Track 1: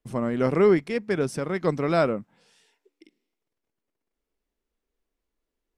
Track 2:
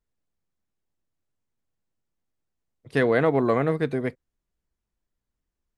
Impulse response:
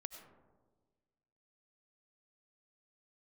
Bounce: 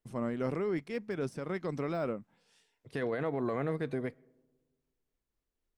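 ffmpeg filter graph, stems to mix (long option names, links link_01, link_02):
-filter_complex "[0:a]deesser=1,tremolo=f=3.9:d=0.43,volume=-5.5dB[link_01];[1:a]volume=-7.5dB,asplit=2[link_02][link_03];[link_03]volume=-19.5dB[link_04];[2:a]atrim=start_sample=2205[link_05];[link_04][link_05]afir=irnorm=-1:irlink=0[link_06];[link_01][link_02][link_06]amix=inputs=3:normalize=0,alimiter=level_in=0.5dB:limit=-24dB:level=0:latency=1:release=56,volume=-0.5dB"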